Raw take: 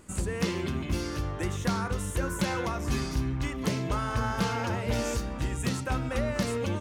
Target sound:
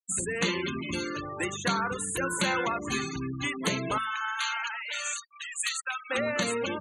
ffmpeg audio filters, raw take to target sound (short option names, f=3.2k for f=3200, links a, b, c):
-af "asetnsamples=n=441:p=0,asendcmd='3.98 highpass f 1300;6.1 highpass f 200',highpass=160,tiltshelf=f=1.4k:g=-6,afftfilt=real='re*gte(hypot(re,im),0.02)':imag='im*gte(hypot(re,im),0.02)':win_size=1024:overlap=0.75,asuperstop=centerf=5200:order=20:qfactor=3.5,bandreject=f=50:t=h:w=6,bandreject=f=100:t=h:w=6,bandreject=f=150:t=h:w=6,bandreject=f=200:t=h:w=6,bandreject=f=250:t=h:w=6,adynamicequalizer=threshold=0.00501:dfrequency=2800:dqfactor=0.7:tfrequency=2800:tqfactor=0.7:attack=5:release=100:ratio=0.375:range=2:mode=cutabove:tftype=highshelf,volume=6dB"